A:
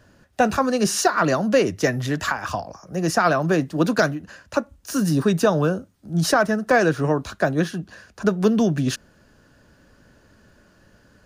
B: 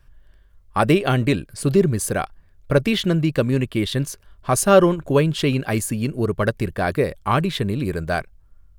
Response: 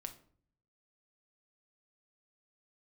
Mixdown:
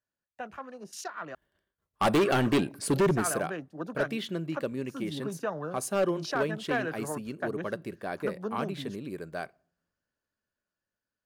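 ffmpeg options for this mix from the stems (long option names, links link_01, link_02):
-filter_complex "[0:a]afwtdn=0.0316,lowshelf=frequency=480:gain=-10.5,dynaudnorm=framelen=800:gausssize=7:maxgain=13dB,volume=-17.5dB,asplit=3[link_01][link_02][link_03];[link_01]atrim=end=1.35,asetpts=PTS-STARTPTS,afade=type=out:start_time=1.346:duration=0.004:curve=hsin[link_04];[link_02]atrim=start=1.35:end=2.14,asetpts=PTS-STARTPTS,volume=0[link_05];[link_03]atrim=start=2.14,asetpts=PTS-STARTPTS,afade=type=in:duration=0.004:curve=hsin[link_06];[link_04][link_05][link_06]concat=n=3:v=0:a=1[link_07];[1:a]agate=range=-33dB:threshold=-40dB:ratio=3:detection=peak,highpass=250,lowshelf=frequency=420:gain=5.5,adelay=1250,volume=-3.5dB,afade=type=out:start_time=3.08:duration=0.43:silence=0.251189,asplit=2[link_08][link_09];[link_09]volume=-11.5dB[link_10];[2:a]atrim=start_sample=2205[link_11];[link_10][link_11]afir=irnorm=-1:irlink=0[link_12];[link_07][link_08][link_12]amix=inputs=3:normalize=0,asoftclip=type=hard:threshold=-20dB"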